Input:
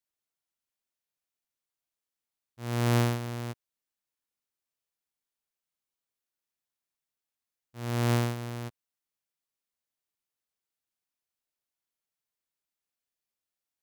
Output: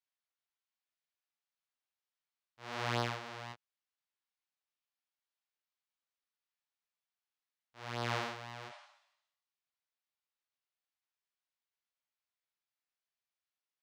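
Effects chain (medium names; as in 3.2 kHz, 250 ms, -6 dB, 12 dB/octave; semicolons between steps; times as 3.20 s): spectral replace 8.72–9.40 s, 570–10000 Hz both; chorus 1 Hz, delay 17 ms, depth 7.2 ms; three-band isolator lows -16 dB, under 590 Hz, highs -22 dB, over 5.7 kHz; trim +1.5 dB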